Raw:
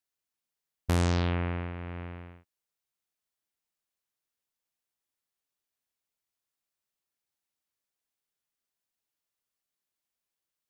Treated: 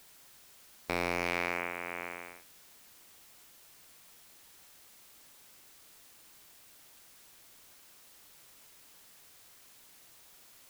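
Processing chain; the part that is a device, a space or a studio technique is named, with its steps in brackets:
drive-through speaker (band-pass filter 500–3,000 Hz; parametric band 2,300 Hz +9.5 dB 0.36 octaves; hard clipping −25.5 dBFS, distortion −7 dB; white noise bed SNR 14 dB)
level +5.5 dB

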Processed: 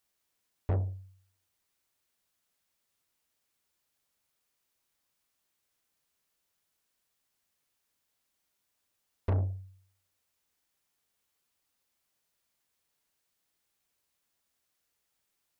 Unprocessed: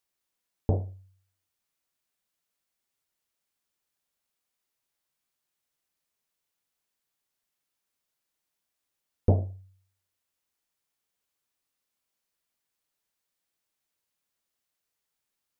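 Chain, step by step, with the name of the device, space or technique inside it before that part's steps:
open-reel tape (soft clipping −29 dBFS, distortion −4 dB; parametric band 76 Hz +4.5 dB 0.99 octaves; white noise bed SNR 41 dB)
level +1.5 dB

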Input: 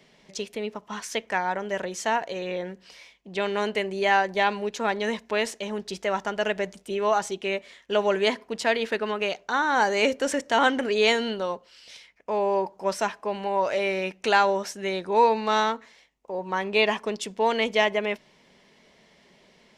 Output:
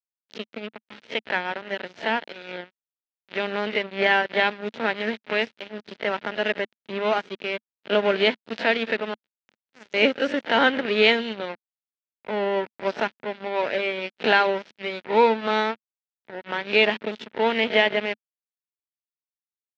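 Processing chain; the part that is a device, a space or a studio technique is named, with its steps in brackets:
peak hold with a rise ahead of every peak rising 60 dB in 0.34 s
0:09.14–0:09.94: drawn EQ curve 120 Hz 0 dB, 300 Hz −27 dB, 600 Hz −21 dB, 3,600 Hz −19 dB, 7,000 Hz +13 dB
blown loudspeaker (dead-zone distortion −29 dBFS; loudspeaker in its box 170–3,800 Hz, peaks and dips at 220 Hz +4 dB, 750 Hz −5 dB, 1,100 Hz −9 dB)
level +5.5 dB

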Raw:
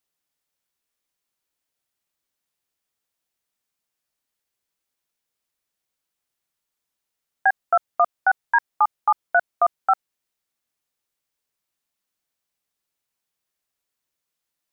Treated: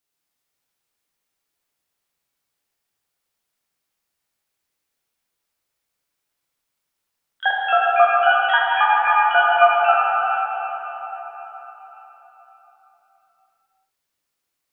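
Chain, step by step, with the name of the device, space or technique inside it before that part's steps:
shimmer-style reverb (pitch-shifted copies added +12 semitones −12 dB; convolution reverb RT60 4.4 s, pre-delay 7 ms, DRR −5 dB)
level −1 dB

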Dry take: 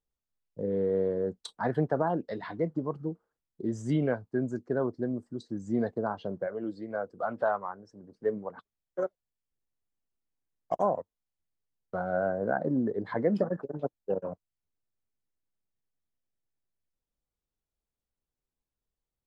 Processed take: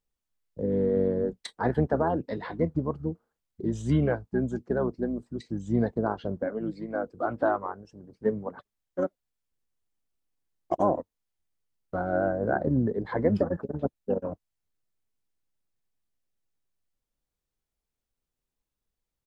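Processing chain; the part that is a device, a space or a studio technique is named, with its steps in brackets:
octave pedal (pitch-shifted copies added −12 semitones −7 dB)
level +2 dB

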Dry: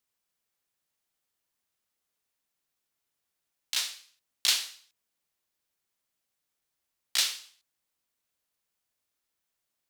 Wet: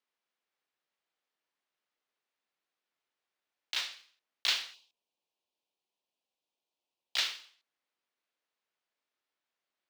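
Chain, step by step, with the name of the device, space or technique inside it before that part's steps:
early digital voice recorder (band-pass filter 290–3,600 Hz; one scale factor per block 5 bits)
0:04.74–0:07.17: flat-topped bell 1,600 Hz −15 dB 1 octave

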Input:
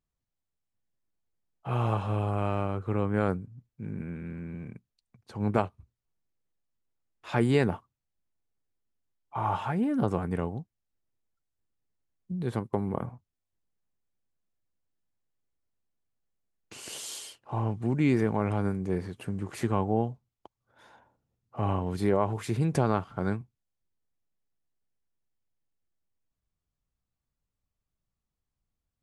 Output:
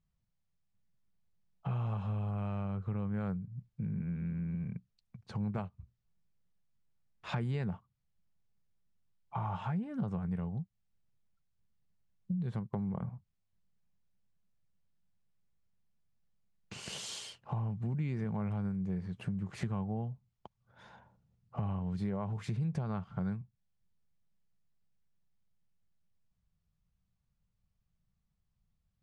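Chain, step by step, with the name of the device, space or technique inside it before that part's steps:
jukebox (low-pass filter 6,100 Hz 12 dB per octave; low shelf with overshoot 230 Hz +6 dB, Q 3; downward compressor 4 to 1, threshold −35 dBFS, peak gain reduction 17 dB)

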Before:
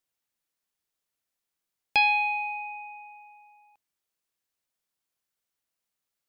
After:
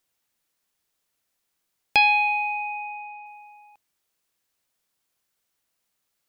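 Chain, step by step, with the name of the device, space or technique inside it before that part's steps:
0:02.28–0:03.26: low-pass filter 5,100 Hz 24 dB per octave
parallel compression (in parallel at −2 dB: downward compressor, threshold −38 dBFS, peak gain reduction 18.5 dB)
on the sum: level +3 dB

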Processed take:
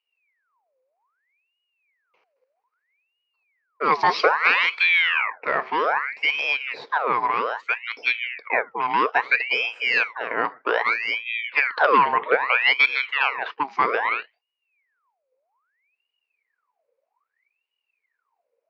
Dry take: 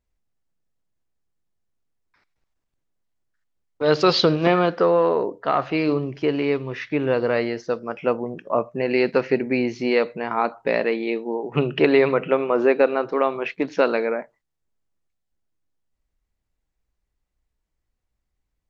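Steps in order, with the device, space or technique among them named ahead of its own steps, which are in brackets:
voice changer toy (ring modulator whose carrier an LFO sweeps 1,700 Hz, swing 70%, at 0.62 Hz; loudspeaker in its box 420–4,700 Hz, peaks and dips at 460 Hz +10 dB, 1,000 Hz +6 dB, 2,300 Hz +6 dB, 3,400 Hz −10 dB)

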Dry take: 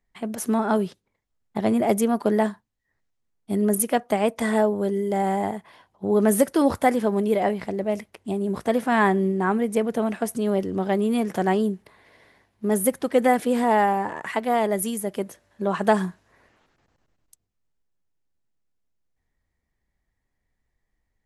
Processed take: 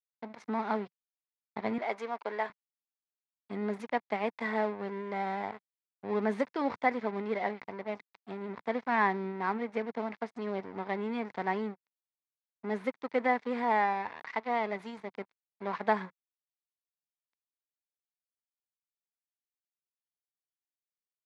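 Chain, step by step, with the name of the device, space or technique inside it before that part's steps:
blown loudspeaker (dead-zone distortion −33.5 dBFS; loudspeaker in its box 170–4,400 Hz, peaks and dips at 170 Hz −5 dB, 330 Hz −8 dB, 580 Hz −4 dB, 960 Hz +5 dB, 2,100 Hz +7 dB, 3,000 Hz −6 dB)
0:01.78–0:02.50: high-pass filter 500 Hz 12 dB per octave
level −7.5 dB

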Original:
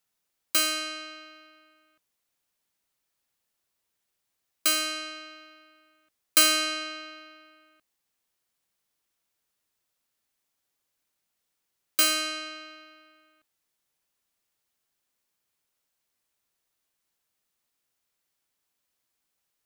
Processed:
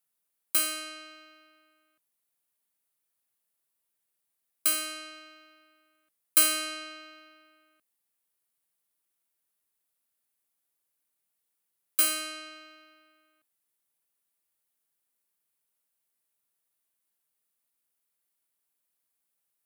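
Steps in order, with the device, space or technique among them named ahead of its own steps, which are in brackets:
budget condenser microphone (high-pass filter 100 Hz; high shelf with overshoot 8,000 Hz +6.5 dB, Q 1.5)
level −6 dB

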